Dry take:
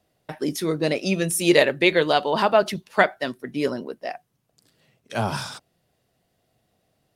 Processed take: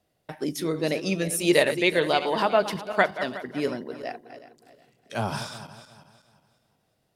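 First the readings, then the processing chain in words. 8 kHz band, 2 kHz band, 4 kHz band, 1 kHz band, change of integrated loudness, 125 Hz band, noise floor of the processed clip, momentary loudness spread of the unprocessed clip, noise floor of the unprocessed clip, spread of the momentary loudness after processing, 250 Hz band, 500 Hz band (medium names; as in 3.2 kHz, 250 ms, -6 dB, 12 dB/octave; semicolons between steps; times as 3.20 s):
-3.0 dB, -3.0 dB, -3.0 dB, -3.0 dB, -3.0 dB, -3.5 dB, -73 dBFS, 16 LU, -71 dBFS, 16 LU, -3.0 dB, -3.0 dB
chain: backward echo that repeats 183 ms, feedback 55%, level -11.5 dB; trim -3.5 dB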